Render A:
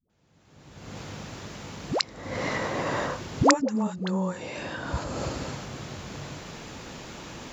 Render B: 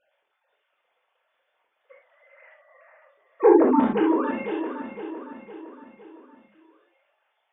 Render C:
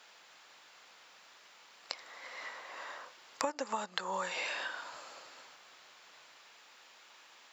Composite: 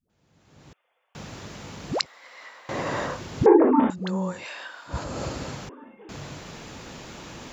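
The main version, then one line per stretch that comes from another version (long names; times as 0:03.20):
A
0:00.73–0:01.15: punch in from B
0:02.06–0:02.69: punch in from C
0:03.46–0:03.90: punch in from B
0:04.41–0:04.91: punch in from C, crossfade 0.10 s
0:05.69–0:06.09: punch in from B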